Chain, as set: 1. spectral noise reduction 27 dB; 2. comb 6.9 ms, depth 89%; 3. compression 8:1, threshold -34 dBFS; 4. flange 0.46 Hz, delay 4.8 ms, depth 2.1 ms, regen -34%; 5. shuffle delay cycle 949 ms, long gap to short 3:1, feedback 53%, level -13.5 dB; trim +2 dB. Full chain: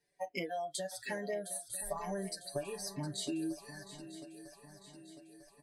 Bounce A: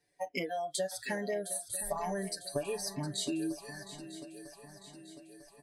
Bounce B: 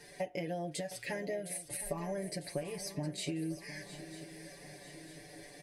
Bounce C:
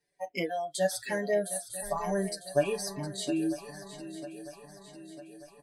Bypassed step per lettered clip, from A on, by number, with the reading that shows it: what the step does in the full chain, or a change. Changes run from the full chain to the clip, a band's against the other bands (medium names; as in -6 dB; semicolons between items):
4, loudness change +3.5 LU; 1, 125 Hz band +4.5 dB; 3, mean gain reduction 5.5 dB